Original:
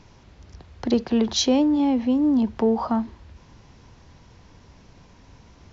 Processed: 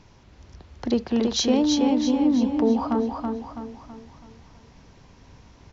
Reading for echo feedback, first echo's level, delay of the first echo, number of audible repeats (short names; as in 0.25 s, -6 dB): 44%, -4.0 dB, 0.328 s, 5